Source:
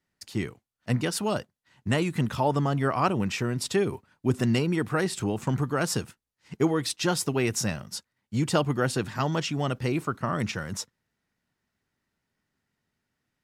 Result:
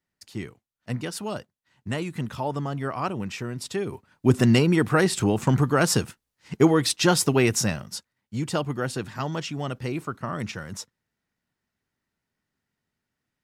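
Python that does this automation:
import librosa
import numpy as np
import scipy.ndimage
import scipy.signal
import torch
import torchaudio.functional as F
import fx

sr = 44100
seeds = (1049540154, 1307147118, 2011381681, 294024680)

y = fx.gain(x, sr, db=fx.line((3.82, -4.0), (4.28, 6.0), (7.38, 6.0), (8.37, -2.5)))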